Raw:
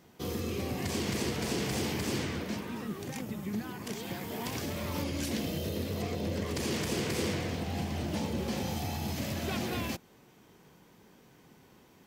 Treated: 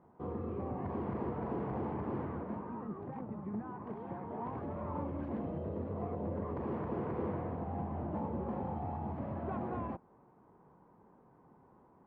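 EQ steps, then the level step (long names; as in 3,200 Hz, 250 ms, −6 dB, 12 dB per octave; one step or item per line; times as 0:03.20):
transistor ladder low-pass 1,200 Hz, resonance 45%
+4.0 dB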